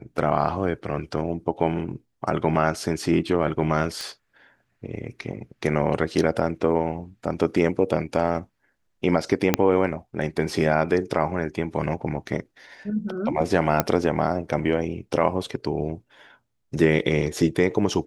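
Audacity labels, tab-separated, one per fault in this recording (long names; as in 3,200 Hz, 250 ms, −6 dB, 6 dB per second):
4.010000	4.010000	click −17 dBFS
9.540000	9.540000	click −2 dBFS
13.800000	13.800000	click −4 dBFS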